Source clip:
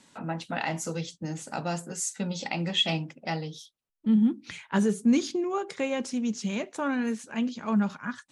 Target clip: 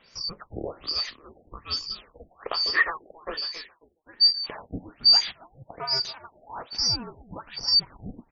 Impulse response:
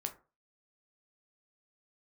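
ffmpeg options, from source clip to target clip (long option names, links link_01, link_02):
-filter_complex "[0:a]afftfilt=real='real(if(lt(b,272),68*(eq(floor(b/68),0)*1+eq(floor(b/68),1)*2+eq(floor(b/68),2)*3+eq(floor(b/68),3)*0)+mod(b,68),b),0)':imag='imag(if(lt(b,272),68*(eq(floor(b/68),0)*1+eq(floor(b/68),1)*2+eq(floor(b/68),2)*3+eq(floor(b/68),3)*0)+mod(b,68),b),0)':win_size=2048:overlap=0.75,asplit=4[link_01][link_02][link_03][link_04];[link_02]adelay=271,afreqshift=-41,volume=-15dB[link_05];[link_03]adelay=542,afreqshift=-82,volume=-23.6dB[link_06];[link_04]adelay=813,afreqshift=-123,volume=-32.3dB[link_07];[link_01][link_05][link_06][link_07]amix=inputs=4:normalize=0,afftfilt=real='re*lt(b*sr/1024,790*pow(7300/790,0.5+0.5*sin(2*PI*1.2*pts/sr)))':imag='im*lt(b*sr/1024,790*pow(7300/790,0.5+0.5*sin(2*PI*1.2*pts/sr)))':win_size=1024:overlap=0.75,volume=4dB"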